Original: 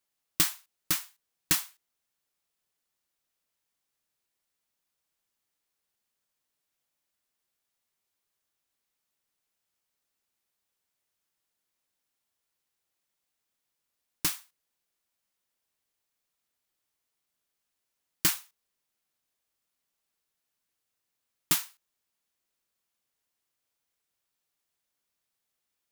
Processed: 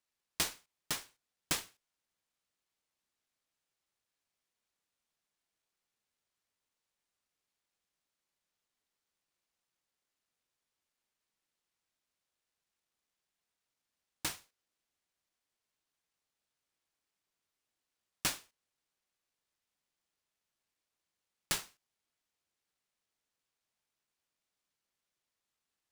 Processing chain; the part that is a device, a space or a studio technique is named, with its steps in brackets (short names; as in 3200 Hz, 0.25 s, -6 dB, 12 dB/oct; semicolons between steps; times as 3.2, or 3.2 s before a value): early companding sampler (sample-rate reducer 18000 Hz, jitter 0%; companded quantiser 8-bit); gain -8.5 dB